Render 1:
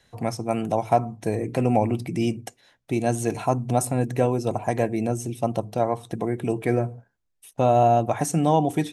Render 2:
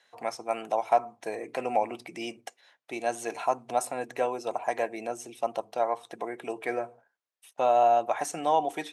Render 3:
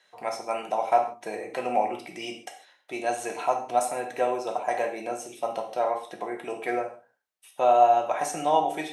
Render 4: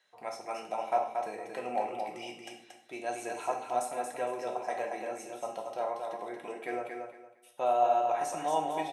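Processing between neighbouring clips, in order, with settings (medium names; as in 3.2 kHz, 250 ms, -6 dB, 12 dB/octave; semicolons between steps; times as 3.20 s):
high-pass 660 Hz 12 dB/octave; treble shelf 6.5 kHz -11 dB
gated-style reverb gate 180 ms falling, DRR 1.5 dB
feedback delay 230 ms, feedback 24%, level -5 dB; trim -8 dB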